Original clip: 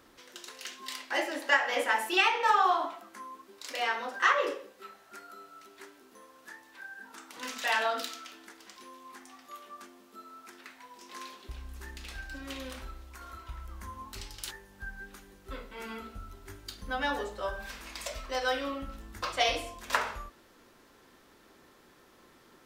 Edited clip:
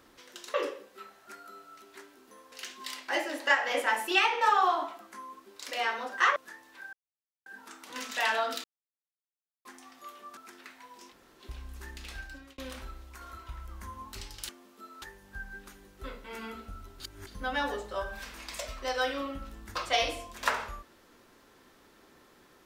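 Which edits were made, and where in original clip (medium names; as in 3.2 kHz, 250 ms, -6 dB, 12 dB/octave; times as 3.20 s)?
4.38–6.36 s: move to 0.54 s
6.93 s: insert silence 0.53 s
8.11–9.12 s: mute
9.84–10.37 s: move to 14.49 s
11.11–11.40 s: room tone, crossfade 0.06 s
12.20–12.58 s: fade out
16.47–16.74 s: reverse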